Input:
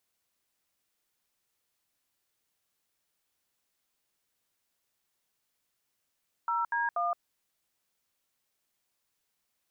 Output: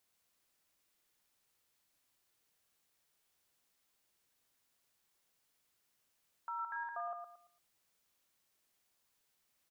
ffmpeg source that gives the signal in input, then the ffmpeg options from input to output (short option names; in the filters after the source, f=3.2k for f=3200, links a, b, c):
-f lavfi -i "aevalsrc='0.0335*clip(min(mod(t,0.241),0.169-mod(t,0.241))/0.002,0,1)*(eq(floor(t/0.241),0)*(sin(2*PI*941*mod(t,0.241))+sin(2*PI*1336*mod(t,0.241)))+eq(floor(t/0.241),1)*(sin(2*PI*941*mod(t,0.241))+sin(2*PI*1633*mod(t,0.241)))+eq(floor(t/0.241),2)*(sin(2*PI*697*mod(t,0.241))+sin(2*PI*1209*mod(t,0.241))))':d=0.723:s=44100"
-filter_complex "[0:a]alimiter=level_in=10.5dB:limit=-24dB:level=0:latency=1:release=148,volume=-10.5dB,asoftclip=type=tanh:threshold=-21.5dB,asplit=2[a][b];[b]aecho=0:1:113|226|339|452:0.501|0.15|0.0451|0.0135[c];[a][c]amix=inputs=2:normalize=0"